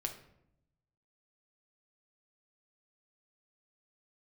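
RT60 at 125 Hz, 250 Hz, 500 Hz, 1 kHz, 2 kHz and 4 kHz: 1.4, 1.1, 0.85, 0.70, 0.60, 0.50 s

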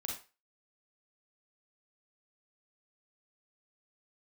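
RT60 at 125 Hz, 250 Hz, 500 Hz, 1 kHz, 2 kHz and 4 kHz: 0.25, 0.25, 0.30, 0.30, 0.30, 0.30 s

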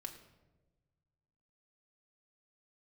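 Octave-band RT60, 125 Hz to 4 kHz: 2.2, 1.6, 1.4, 0.95, 0.80, 0.65 s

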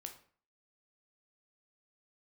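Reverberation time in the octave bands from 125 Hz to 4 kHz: 0.45, 0.50, 0.45, 0.45, 0.45, 0.35 s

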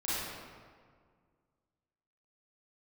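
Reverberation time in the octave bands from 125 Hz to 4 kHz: 2.3, 2.2, 1.9, 1.8, 1.5, 1.1 s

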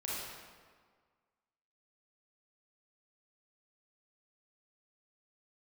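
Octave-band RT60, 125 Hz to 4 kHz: 1.6, 1.7, 1.7, 1.7, 1.4, 1.1 s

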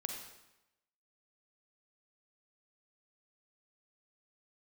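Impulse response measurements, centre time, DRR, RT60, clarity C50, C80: 39 ms, 2.5 dB, 0.95 s, 3.5 dB, 6.0 dB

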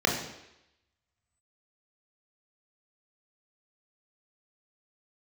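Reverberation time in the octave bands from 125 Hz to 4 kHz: 0.70, 0.80, 0.85, 0.85, 0.90, 0.90 s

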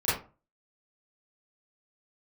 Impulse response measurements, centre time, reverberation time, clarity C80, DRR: 50 ms, 0.35 s, 9.5 dB, -13.5 dB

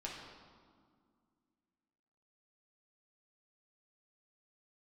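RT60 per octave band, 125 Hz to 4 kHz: 2.4, 2.9, 2.0, 2.0, 1.4, 1.2 s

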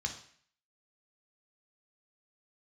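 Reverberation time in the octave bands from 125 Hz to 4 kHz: 0.50, 0.55, 0.55, 0.55, 0.60, 0.55 s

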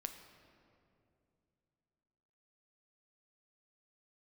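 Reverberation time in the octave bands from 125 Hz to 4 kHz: 3.4, 3.3, 2.9, 2.3, 1.9, 1.5 s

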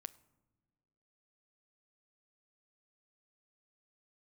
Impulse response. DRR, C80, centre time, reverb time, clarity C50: 14.5 dB, 22.0 dB, 2 ms, not exponential, 19.5 dB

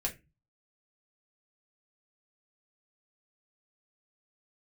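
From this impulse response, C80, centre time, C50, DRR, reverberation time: 22.5 dB, 12 ms, 14.5 dB, -2.0 dB, 0.25 s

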